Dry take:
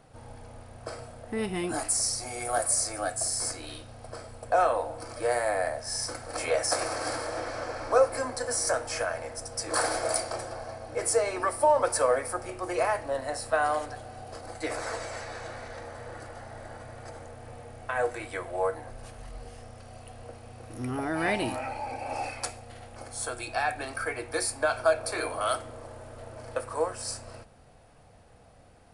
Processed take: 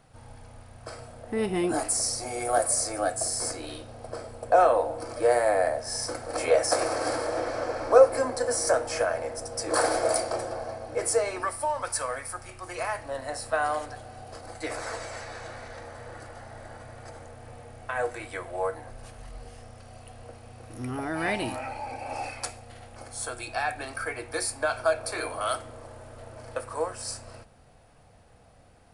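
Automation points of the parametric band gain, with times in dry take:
parametric band 430 Hz 1.9 octaves
0:00.82 −5 dB
0:01.54 +6.5 dB
0:10.62 +6.5 dB
0:11.35 −1.5 dB
0:11.71 −12.5 dB
0:12.57 −12.5 dB
0:13.32 −1.5 dB

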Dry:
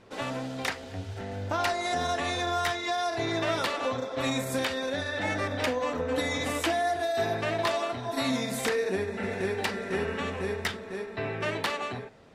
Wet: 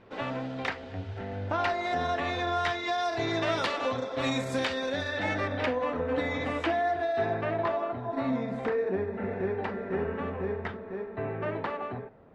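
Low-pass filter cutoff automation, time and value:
0:02.32 3,000 Hz
0:03.24 5,600 Hz
0:05.12 5,600 Hz
0:05.78 2,400 Hz
0:07.12 2,400 Hz
0:07.76 1,300 Hz

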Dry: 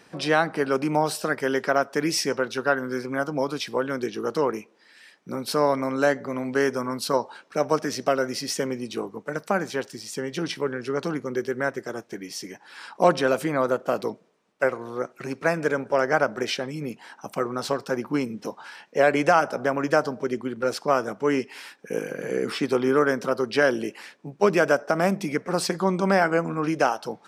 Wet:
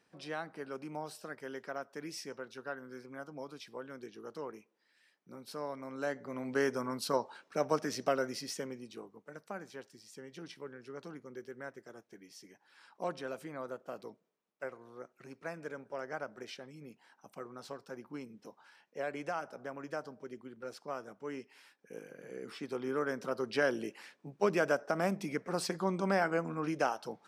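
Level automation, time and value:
0:05.77 −19 dB
0:06.57 −8.5 dB
0:08.17 −8.5 dB
0:09.15 −19 dB
0:22.34 −19 dB
0:23.49 −10 dB

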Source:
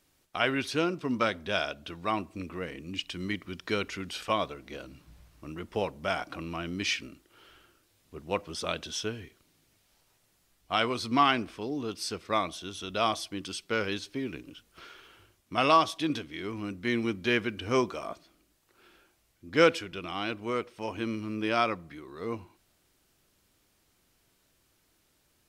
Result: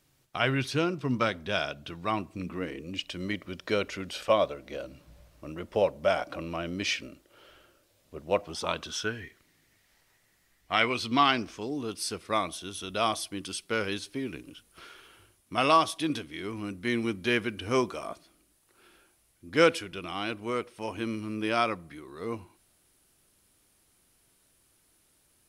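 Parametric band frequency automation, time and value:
parametric band +11.5 dB 0.39 octaves
0:02.35 130 Hz
0:02.90 570 Hz
0:08.30 570 Hz
0:09.23 1,900 Hz
0:10.77 1,900 Hz
0:11.83 10,000 Hz

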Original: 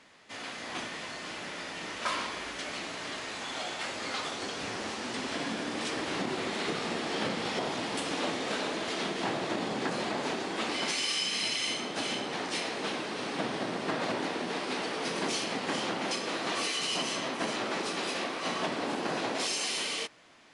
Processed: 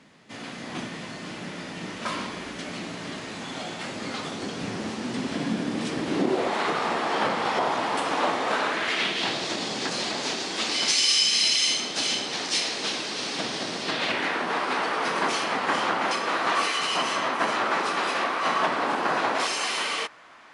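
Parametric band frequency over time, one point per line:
parametric band +13 dB 1.9 octaves
0:06.02 170 Hz
0:06.58 1,000 Hz
0:08.52 1,000 Hz
0:09.46 5,400 Hz
0:13.79 5,400 Hz
0:14.46 1,200 Hz

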